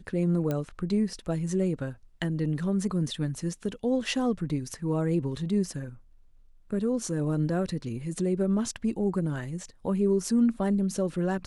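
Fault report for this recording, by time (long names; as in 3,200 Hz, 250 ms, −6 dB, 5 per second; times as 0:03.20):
0:00.51: click −17 dBFS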